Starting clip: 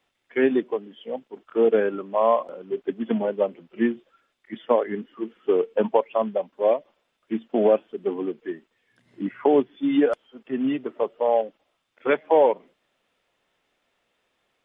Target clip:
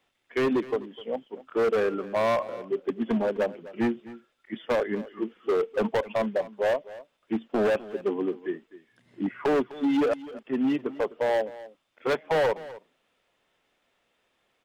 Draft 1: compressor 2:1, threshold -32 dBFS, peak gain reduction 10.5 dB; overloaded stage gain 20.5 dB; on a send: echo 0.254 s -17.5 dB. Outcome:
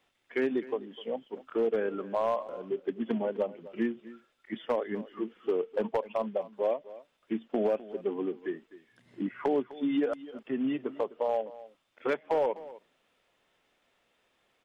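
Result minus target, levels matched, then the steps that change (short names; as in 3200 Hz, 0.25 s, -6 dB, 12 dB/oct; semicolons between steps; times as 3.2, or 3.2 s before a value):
compressor: peak gain reduction +10.5 dB
remove: compressor 2:1, threshold -32 dBFS, peak gain reduction 10.5 dB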